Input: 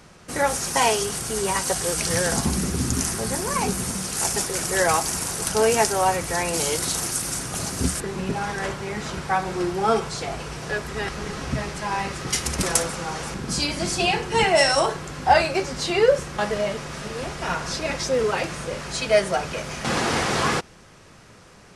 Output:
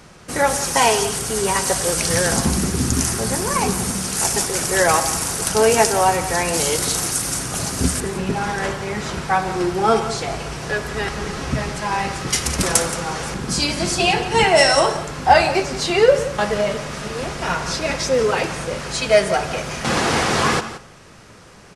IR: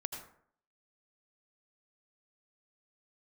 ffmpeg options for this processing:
-filter_complex "[0:a]aecho=1:1:174:0.188,asplit=2[a][b];[1:a]atrim=start_sample=2205[c];[b][c]afir=irnorm=-1:irlink=0,volume=-7.5dB[d];[a][d]amix=inputs=2:normalize=0,volume=1.5dB"

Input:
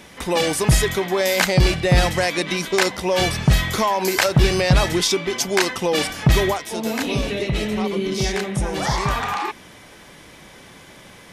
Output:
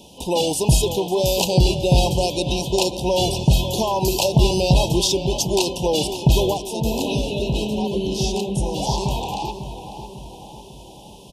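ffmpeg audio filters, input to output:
-filter_complex "[0:a]asuperstop=centerf=1600:order=20:qfactor=1,asplit=2[a][b];[b]adelay=548,lowpass=f=3.2k:p=1,volume=-10dB,asplit=2[c][d];[d]adelay=548,lowpass=f=3.2k:p=1,volume=0.55,asplit=2[e][f];[f]adelay=548,lowpass=f=3.2k:p=1,volume=0.55,asplit=2[g][h];[h]adelay=548,lowpass=f=3.2k:p=1,volume=0.55,asplit=2[i][j];[j]adelay=548,lowpass=f=3.2k:p=1,volume=0.55,asplit=2[k][l];[l]adelay=548,lowpass=f=3.2k:p=1,volume=0.55[m];[a][c][e][g][i][k][m]amix=inputs=7:normalize=0"

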